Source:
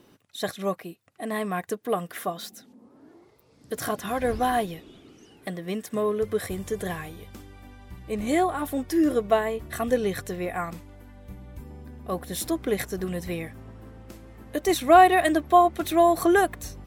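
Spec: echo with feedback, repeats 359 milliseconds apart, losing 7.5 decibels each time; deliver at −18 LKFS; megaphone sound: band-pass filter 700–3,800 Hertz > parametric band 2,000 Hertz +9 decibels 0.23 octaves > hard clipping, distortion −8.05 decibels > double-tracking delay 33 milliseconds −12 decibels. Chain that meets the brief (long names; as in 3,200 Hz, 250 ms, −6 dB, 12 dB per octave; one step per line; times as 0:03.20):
band-pass filter 700–3,800 Hz
parametric band 2,000 Hz +9 dB 0.23 octaves
repeating echo 359 ms, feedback 42%, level −7.5 dB
hard clipping −20 dBFS
double-tracking delay 33 ms −12 dB
level +12 dB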